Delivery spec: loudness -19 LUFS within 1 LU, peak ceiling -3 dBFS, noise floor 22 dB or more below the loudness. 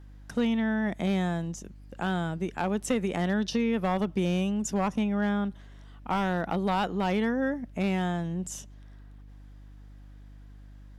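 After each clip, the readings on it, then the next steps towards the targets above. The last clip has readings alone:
clipped samples 0.5%; clipping level -18.5 dBFS; hum 50 Hz; highest harmonic 300 Hz; hum level -46 dBFS; loudness -29.0 LUFS; peak level -18.5 dBFS; loudness target -19.0 LUFS
-> clip repair -18.5 dBFS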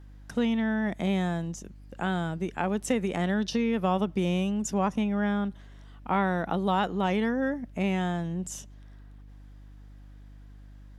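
clipped samples 0.0%; hum 50 Hz; highest harmonic 300 Hz; hum level -46 dBFS
-> de-hum 50 Hz, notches 6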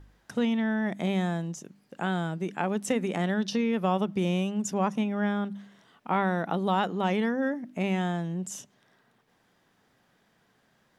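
hum not found; loudness -29.0 LUFS; peak level -12.0 dBFS; loudness target -19.0 LUFS
-> trim +10 dB; peak limiter -3 dBFS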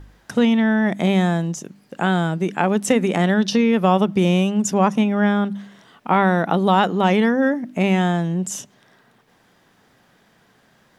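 loudness -19.0 LUFS; peak level -3.0 dBFS; noise floor -58 dBFS

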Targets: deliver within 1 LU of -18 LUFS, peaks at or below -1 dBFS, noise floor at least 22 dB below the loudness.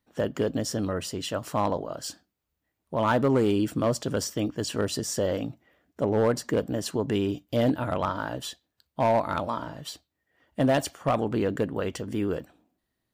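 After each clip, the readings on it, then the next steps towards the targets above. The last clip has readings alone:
clipped samples 0.6%; clipping level -16.5 dBFS; loudness -27.5 LUFS; peak level -16.5 dBFS; loudness target -18.0 LUFS
-> clip repair -16.5 dBFS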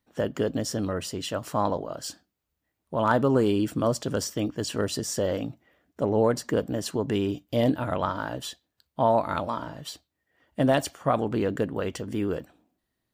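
clipped samples 0.0%; loudness -27.5 LUFS; peak level -7.5 dBFS; loudness target -18.0 LUFS
-> trim +9.5 dB; peak limiter -1 dBFS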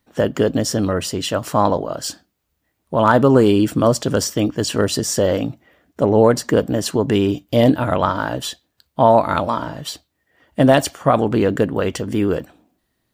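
loudness -18.0 LUFS; peak level -1.0 dBFS; noise floor -72 dBFS

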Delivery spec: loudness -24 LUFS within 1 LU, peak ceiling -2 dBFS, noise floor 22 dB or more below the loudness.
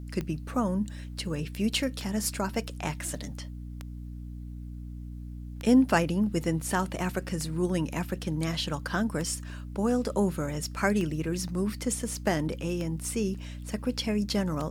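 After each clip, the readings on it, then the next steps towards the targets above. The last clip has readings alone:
clicks found 9; hum 60 Hz; highest harmonic 300 Hz; hum level -37 dBFS; loudness -29.5 LUFS; peak level -9.5 dBFS; loudness target -24.0 LUFS
-> de-click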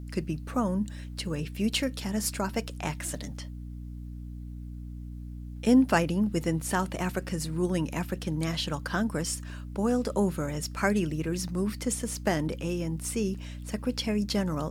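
clicks found 0; hum 60 Hz; highest harmonic 300 Hz; hum level -37 dBFS
-> hum notches 60/120/180/240/300 Hz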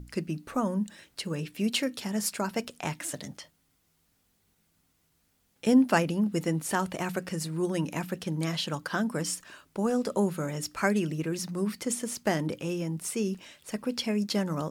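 hum not found; loudness -30.0 LUFS; peak level -9.5 dBFS; loudness target -24.0 LUFS
-> trim +6 dB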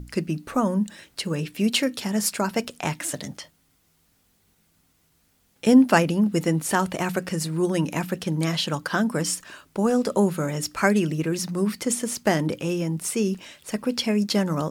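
loudness -24.0 LUFS; peak level -3.5 dBFS; noise floor -65 dBFS

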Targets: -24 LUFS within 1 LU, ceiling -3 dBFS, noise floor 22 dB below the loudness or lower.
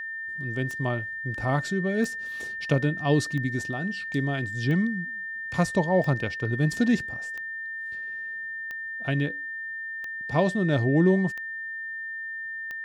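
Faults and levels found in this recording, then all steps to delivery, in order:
clicks found 10; steady tone 1.8 kHz; tone level -32 dBFS; loudness -27.5 LUFS; peak level -10.0 dBFS; loudness target -24.0 LUFS
-> de-click; band-stop 1.8 kHz, Q 30; trim +3.5 dB

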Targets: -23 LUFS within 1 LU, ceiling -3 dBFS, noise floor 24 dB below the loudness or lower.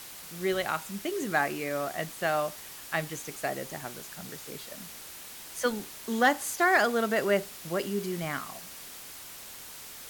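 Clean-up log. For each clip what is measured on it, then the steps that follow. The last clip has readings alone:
noise floor -45 dBFS; noise floor target -54 dBFS; loudness -30.0 LUFS; peak level -13.5 dBFS; loudness target -23.0 LUFS
-> noise reduction 9 dB, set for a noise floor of -45 dBFS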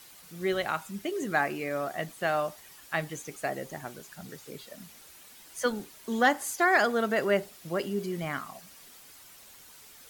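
noise floor -52 dBFS; noise floor target -54 dBFS
-> noise reduction 6 dB, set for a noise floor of -52 dBFS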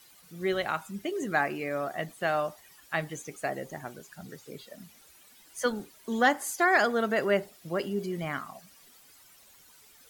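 noise floor -57 dBFS; loudness -30.0 LUFS; peak level -13.0 dBFS; loudness target -23.0 LUFS
-> trim +7 dB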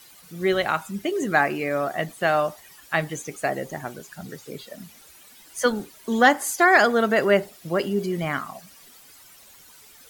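loudness -23.0 LUFS; peak level -6.0 dBFS; noise floor -50 dBFS

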